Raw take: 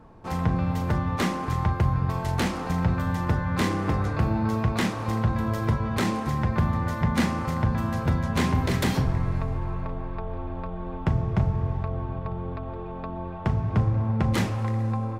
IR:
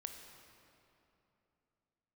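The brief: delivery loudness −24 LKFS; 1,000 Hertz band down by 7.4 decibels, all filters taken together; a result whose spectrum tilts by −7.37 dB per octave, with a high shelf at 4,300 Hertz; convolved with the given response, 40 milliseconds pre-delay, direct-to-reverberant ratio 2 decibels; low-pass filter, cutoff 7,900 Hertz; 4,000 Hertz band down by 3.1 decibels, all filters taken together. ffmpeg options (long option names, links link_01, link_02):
-filter_complex "[0:a]lowpass=7900,equalizer=frequency=1000:width_type=o:gain=-9,equalizer=frequency=4000:width_type=o:gain=-5,highshelf=frequency=4300:gain=3.5,asplit=2[link_01][link_02];[1:a]atrim=start_sample=2205,adelay=40[link_03];[link_02][link_03]afir=irnorm=-1:irlink=0,volume=1dB[link_04];[link_01][link_04]amix=inputs=2:normalize=0,volume=1.5dB"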